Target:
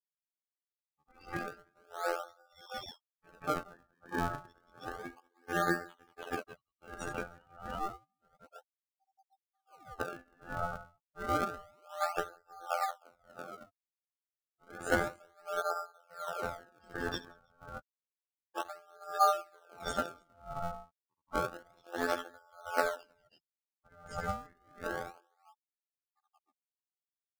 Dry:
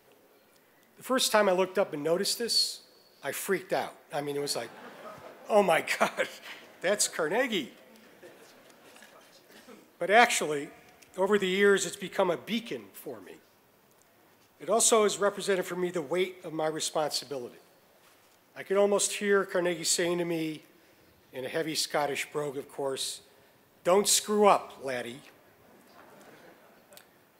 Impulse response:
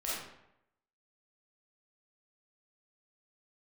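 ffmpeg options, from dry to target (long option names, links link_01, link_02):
-filter_complex "[0:a]bass=frequency=250:gain=13,treble=frequency=4000:gain=-1,acompressor=threshold=-37dB:ratio=8,asplit=2[link_01][link_02];[1:a]atrim=start_sample=2205,asetrate=39249,aresample=44100[link_03];[link_02][link_03]afir=irnorm=-1:irlink=0,volume=-19dB[link_04];[link_01][link_04]amix=inputs=2:normalize=0,aeval=exprs='val(0)*sin(2*PI*1000*n/s)':channel_layout=same,afftfilt=real='re*gte(hypot(re,im),0.02)':imag='im*gte(hypot(re,im),0.02)':win_size=1024:overlap=0.75,aecho=1:1:73|181|304|318:0.299|0.355|0.119|0.447,afftfilt=real='hypot(re,im)*cos(PI*b)':imag='0':win_size=2048:overlap=0.75,highshelf=frequency=5000:gain=-9.5,asplit=2[link_05][link_06];[link_06]acrusher=samples=36:mix=1:aa=0.000001:lfo=1:lforange=57.6:lforate=0.3,volume=-4.5dB[link_07];[link_05][link_07]amix=inputs=2:normalize=0,dynaudnorm=framelen=680:gausssize=11:maxgain=7dB,aeval=exprs='val(0)*pow(10,-34*(0.5-0.5*cos(2*PI*1.4*n/s))/20)':channel_layout=same,volume=8dB"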